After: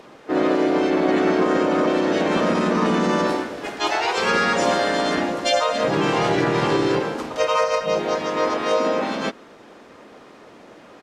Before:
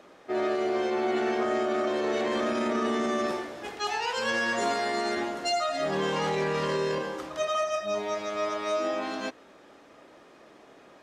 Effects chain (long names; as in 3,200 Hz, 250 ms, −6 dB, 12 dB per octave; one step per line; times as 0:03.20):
pitch-shifted copies added −5 semitones −3 dB, −3 semitones −2 dB, +3 semitones −16 dB
level +5 dB